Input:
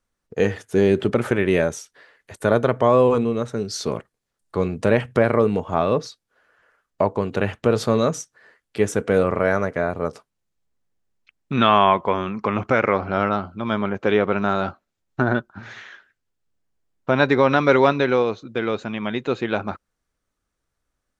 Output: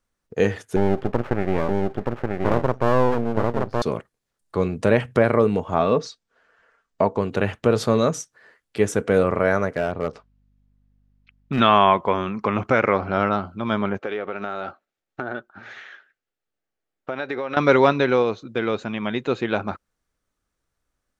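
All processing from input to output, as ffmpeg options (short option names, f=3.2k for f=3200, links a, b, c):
-filter_complex "[0:a]asettb=1/sr,asplit=3[a][b][c];[a]atrim=end=0.764[d];[b]atrim=start=0.76:end=3.82,asetpts=PTS-STARTPTS,afade=t=in:d=0.004:c=qsin,afade=t=out:st=3.056:d=0.004:c=qsin,lowpass=1.3k,aecho=1:1:925:0.708,atrim=end_sample=134946,aeval=exprs='max(val(0),0)':c=same[e];[c]atrim=start=3.816[f];[d][e]acrossfade=d=0.004:c1=hsin:c2=qsin[g];[g][f]acrossfade=d=0.004:c1=qsin:c2=hsin,asettb=1/sr,asplit=3[h][i][j];[h]atrim=end=5.794[k];[i]atrim=start=5.79:end=7.18,asetpts=PTS-STARTPTS,afade=t=in:d=0.004:c=qsin,afade=t=out:st=1.386:d=0.004:c=qsin,lowpass=f=8.2k:w=0.5412,lowpass=f=8.2k:w=1.3066,aecho=1:1:4.4:0.32,atrim=end_sample=61299[l];[j]atrim=start=7.176[m];[k][l]acrossfade=d=0.004:c1=hsin:c2=qsin[n];[n][m]acrossfade=d=0.004:c1=qsin:c2=hsin,asettb=1/sr,asplit=3[o][p][q];[o]atrim=end=9.764[r];[p]atrim=start=9.76:end=11.6,asetpts=PTS-STARTPTS,afade=t=in:d=0.004:c=qsin,afade=t=out:st=1.836:d=0.004:c=qsin,lowpass=3.9k,asoftclip=type=hard:threshold=-15.5dB,aeval=exprs='val(0)+0.000891*(sin(2*PI*50*n/s)+sin(2*PI*2*50*n/s)/2+sin(2*PI*3*50*n/s)/3+sin(2*PI*4*50*n/s)/4+sin(2*PI*5*50*n/s)/5)':c=same[s];[q]atrim=start=11.596[t];[r][s]acrossfade=d=0.004:c1=hsin:c2=qsin[u];[u][t]acrossfade=d=0.004:c1=qsin:c2=hsin,asettb=1/sr,asplit=3[v][w][x];[v]atrim=end=13.994[y];[w]atrim=start=13.99:end=17.57,asetpts=PTS-STARTPTS,afade=t=in:d=0.004:c=qsin,afade=t=out:st=3.576:d=0.004:c=qsin,bass=f=250:g=-13,treble=f=4k:g=-7,acompressor=threshold=-24dB:ratio=4:attack=3.2:release=140:knee=1:detection=peak,bandreject=f=1k:w=7[z];[x]atrim=start=17.566[aa];[y][z]acrossfade=d=0.004:c1=hsin:c2=qsin[ab];[ab][aa]acrossfade=d=0.004:c1=qsin:c2=hsin"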